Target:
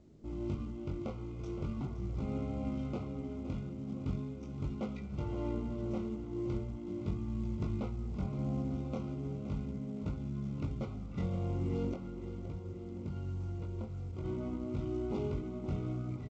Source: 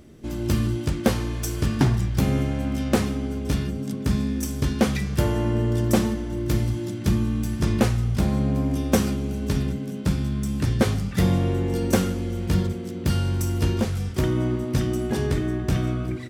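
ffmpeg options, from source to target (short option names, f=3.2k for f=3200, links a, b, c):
-filter_complex "[0:a]alimiter=limit=-15dB:level=0:latency=1:release=384,asettb=1/sr,asplit=3[a][b][c];[a]atrim=end=11.924[d];[b]atrim=start=11.92:end=14.25,asetpts=PTS-STARTPTS,afade=t=in:d=0.004:c=qsin,afade=t=out:st=2.326:d=0.004:c=qsin,acompressor=threshold=-27dB:ratio=6[e];[c]atrim=start=14.246[f];[d][e]acrossfade=d=0.004:c1=hsin:c2=qsin[g];[g][f]acrossfade=d=0.004:c1=qsin:c2=hsin,flanger=delay=19:depth=4.3:speed=0.4,adynamicsmooth=sensitivity=4:basefreq=1.1k,asuperstop=centerf=1700:order=20:qfactor=3.5,aecho=1:1:518|1036|1554|2072|2590:0.251|0.131|0.0679|0.0353|0.0184,volume=-8dB" -ar 16000 -c:a pcm_mulaw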